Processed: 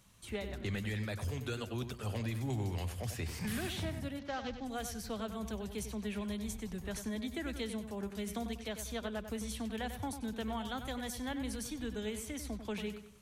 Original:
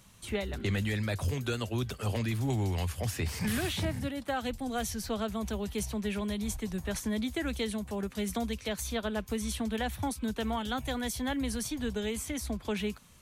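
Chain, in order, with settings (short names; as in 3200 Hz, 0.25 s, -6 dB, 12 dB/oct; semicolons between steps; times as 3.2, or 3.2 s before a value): 4.19–4.65 CVSD 32 kbps; darkening echo 96 ms, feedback 39%, low-pass 4000 Hz, level -9 dB; gain -6.5 dB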